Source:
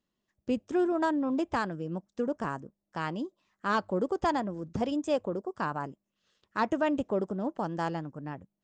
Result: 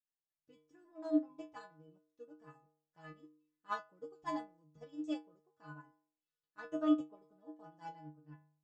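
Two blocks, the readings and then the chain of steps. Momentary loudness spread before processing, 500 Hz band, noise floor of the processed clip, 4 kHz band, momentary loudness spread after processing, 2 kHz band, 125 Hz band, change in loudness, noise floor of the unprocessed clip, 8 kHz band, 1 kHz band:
10 LU, -15.5 dB, under -85 dBFS, -13.5 dB, 23 LU, -16.5 dB, -20.0 dB, -7.5 dB, -85 dBFS, under -15 dB, -15.0 dB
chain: inharmonic resonator 150 Hz, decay 0.63 s, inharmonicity 0.008; upward expansion 2.5:1, over -49 dBFS; trim +10 dB

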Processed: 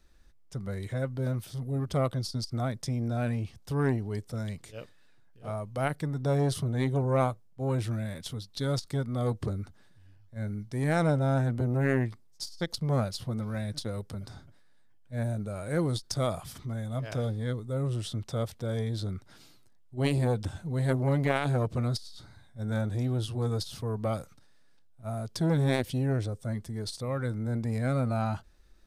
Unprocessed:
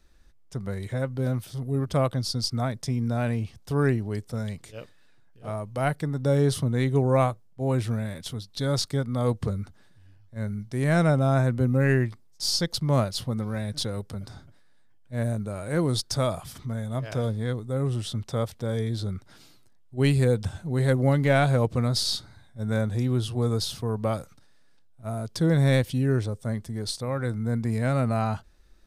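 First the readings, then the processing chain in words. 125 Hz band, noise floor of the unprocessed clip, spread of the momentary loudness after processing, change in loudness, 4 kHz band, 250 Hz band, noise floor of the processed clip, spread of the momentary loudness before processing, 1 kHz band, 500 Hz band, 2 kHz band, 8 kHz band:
-4.0 dB, -55 dBFS, 12 LU, -4.5 dB, -8.0 dB, -4.5 dB, -57 dBFS, 13 LU, -4.0 dB, -5.0 dB, -5.0 dB, -7.5 dB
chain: transformer saturation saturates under 460 Hz; trim -2 dB

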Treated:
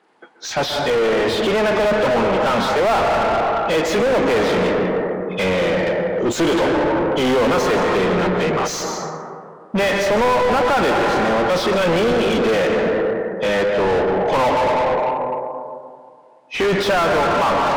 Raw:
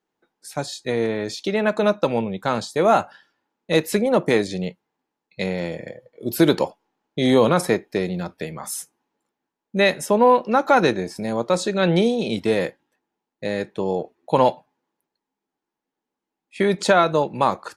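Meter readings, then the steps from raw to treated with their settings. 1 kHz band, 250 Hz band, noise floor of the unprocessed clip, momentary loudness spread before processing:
+5.0 dB, +2.0 dB, -85 dBFS, 13 LU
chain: knee-point frequency compression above 2.5 kHz 1.5:1; plate-style reverb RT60 2.1 s, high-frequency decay 0.3×, pre-delay 115 ms, DRR 8 dB; overdrive pedal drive 39 dB, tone 1.7 kHz, clips at -3.5 dBFS; trim -6 dB

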